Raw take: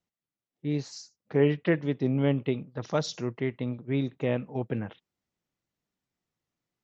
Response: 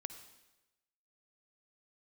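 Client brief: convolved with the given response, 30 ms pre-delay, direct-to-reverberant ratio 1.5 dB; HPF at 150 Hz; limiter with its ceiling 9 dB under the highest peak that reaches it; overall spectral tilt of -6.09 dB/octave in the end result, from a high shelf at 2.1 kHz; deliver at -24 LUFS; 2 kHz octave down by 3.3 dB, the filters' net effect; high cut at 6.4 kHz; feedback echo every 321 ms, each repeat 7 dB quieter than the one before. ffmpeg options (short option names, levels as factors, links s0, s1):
-filter_complex "[0:a]highpass=150,lowpass=6400,equalizer=f=2000:t=o:g=-6.5,highshelf=f=2100:g=5,alimiter=limit=0.0944:level=0:latency=1,aecho=1:1:321|642|963|1284|1605:0.447|0.201|0.0905|0.0407|0.0183,asplit=2[s0][s1];[1:a]atrim=start_sample=2205,adelay=30[s2];[s1][s2]afir=irnorm=-1:irlink=0,volume=1.19[s3];[s0][s3]amix=inputs=2:normalize=0,volume=2.11"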